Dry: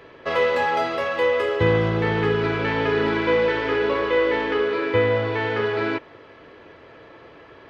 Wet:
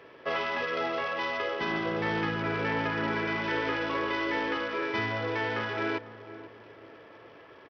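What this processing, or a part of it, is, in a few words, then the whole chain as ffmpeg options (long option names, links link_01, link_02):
Bluetooth headset: -filter_complex "[0:a]asettb=1/sr,asplit=3[link_01][link_02][link_03];[link_01]atrim=end=2.304[link_04];[link_02]atrim=start=2.3:end=3.41,asetpts=PTS-STARTPTS,afade=type=in:duration=0.004:curve=qsin,afade=type=out:start_time=1.106:duration=0.004:curve=qsin,acrossover=split=3500[link_05][link_06];[link_06]acompressor=threshold=-56dB:ratio=4:attack=1:release=60[link_07];[link_05][link_07]amix=inputs=2:normalize=0[link_08];[link_03]atrim=start=3.406[link_09];[link_04][link_08]acrossfade=duration=0.004:curve1=hsin:curve2=qsin[link_10];[link_10][link_09]acrossfade=duration=0.004:curve1=qsin:curve2=hsin,afftfilt=real='re*lt(hypot(re,im),0.501)':imag='im*lt(hypot(re,im),0.501)':win_size=1024:overlap=0.75,highpass=frequency=170:poles=1,asplit=2[link_11][link_12];[link_12]adelay=492,lowpass=frequency=920:poles=1,volume=-13.5dB,asplit=2[link_13][link_14];[link_14]adelay=492,lowpass=frequency=920:poles=1,volume=0.43,asplit=2[link_15][link_16];[link_16]adelay=492,lowpass=frequency=920:poles=1,volume=0.43,asplit=2[link_17][link_18];[link_18]adelay=492,lowpass=frequency=920:poles=1,volume=0.43[link_19];[link_11][link_13][link_15][link_17][link_19]amix=inputs=5:normalize=0,aresample=8000,aresample=44100,volume=-5dB" -ar 44100 -c:a sbc -b:a 64k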